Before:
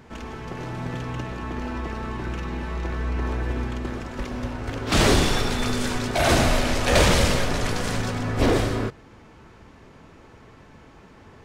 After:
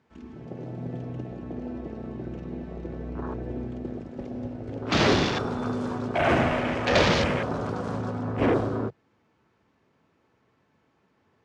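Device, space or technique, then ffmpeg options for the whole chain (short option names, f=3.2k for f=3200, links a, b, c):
over-cleaned archive recording: -af "highpass=110,lowpass=6.9k,afwtdn=0.0398,volume=-1.5dB"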